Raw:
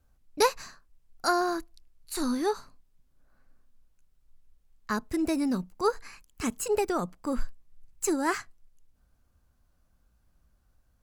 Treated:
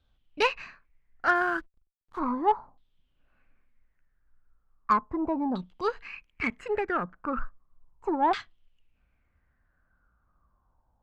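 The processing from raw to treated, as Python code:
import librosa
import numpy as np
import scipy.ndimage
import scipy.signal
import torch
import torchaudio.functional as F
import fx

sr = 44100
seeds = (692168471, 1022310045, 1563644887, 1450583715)

y = fx.filter_lfo_lowpass(x, sr, shape='saw_down', hz=0.36, low_hz=800.0, high_hz=3600.0, q=7.4)
y = fx.backlash(y, sr, play_db=-44.0, at=(1.34, 2.18), fade=0.02)
y = fx.cheby_harmonics(y, sr, harmonics=(6,), levels_db=(-29,), full_scale_db=-7.5)
y = y * librosa.db_to_amplitude(-3.0)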